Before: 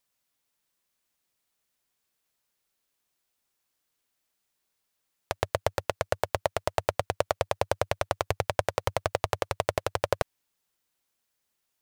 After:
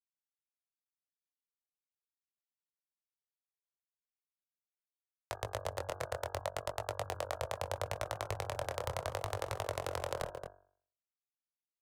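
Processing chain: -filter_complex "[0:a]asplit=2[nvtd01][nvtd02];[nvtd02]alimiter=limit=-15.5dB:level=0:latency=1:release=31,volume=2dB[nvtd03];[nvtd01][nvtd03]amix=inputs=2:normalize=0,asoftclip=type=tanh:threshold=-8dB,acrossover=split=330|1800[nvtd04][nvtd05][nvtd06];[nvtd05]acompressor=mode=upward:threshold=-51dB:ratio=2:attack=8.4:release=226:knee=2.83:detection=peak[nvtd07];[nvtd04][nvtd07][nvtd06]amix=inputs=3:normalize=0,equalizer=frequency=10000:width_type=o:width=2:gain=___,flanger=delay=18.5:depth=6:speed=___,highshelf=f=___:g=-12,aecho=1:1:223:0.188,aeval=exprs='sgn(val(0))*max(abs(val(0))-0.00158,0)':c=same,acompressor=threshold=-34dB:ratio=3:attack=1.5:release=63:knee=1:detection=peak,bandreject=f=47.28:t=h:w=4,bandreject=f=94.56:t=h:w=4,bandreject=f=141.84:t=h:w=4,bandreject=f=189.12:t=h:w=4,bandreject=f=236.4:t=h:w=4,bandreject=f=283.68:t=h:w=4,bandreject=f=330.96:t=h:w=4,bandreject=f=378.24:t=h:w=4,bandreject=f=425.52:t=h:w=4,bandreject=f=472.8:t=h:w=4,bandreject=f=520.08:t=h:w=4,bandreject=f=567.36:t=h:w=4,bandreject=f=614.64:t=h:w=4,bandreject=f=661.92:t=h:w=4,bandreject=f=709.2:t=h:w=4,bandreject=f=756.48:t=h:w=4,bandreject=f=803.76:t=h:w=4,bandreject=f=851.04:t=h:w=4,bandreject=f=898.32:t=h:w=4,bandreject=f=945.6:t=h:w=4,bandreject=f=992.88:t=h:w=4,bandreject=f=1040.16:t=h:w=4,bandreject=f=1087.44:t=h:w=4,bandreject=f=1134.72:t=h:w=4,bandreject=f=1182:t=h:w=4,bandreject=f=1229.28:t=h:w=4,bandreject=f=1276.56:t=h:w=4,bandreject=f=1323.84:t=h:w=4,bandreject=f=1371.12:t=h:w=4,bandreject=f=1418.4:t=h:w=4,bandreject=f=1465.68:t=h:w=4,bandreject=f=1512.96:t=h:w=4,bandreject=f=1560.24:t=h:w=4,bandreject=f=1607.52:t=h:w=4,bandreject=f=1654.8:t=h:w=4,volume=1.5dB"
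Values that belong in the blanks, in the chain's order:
11, 0.74, 2600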